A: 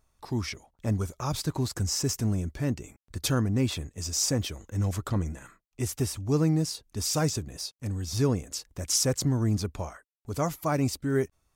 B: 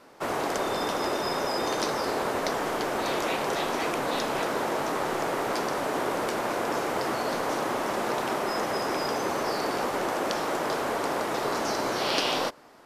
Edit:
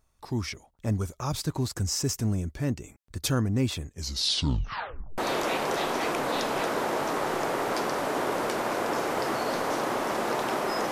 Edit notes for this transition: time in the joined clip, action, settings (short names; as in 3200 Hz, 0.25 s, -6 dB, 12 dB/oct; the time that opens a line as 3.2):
A
3.87 tape stop 1.31 s
5.18 switch to B from 2.97 s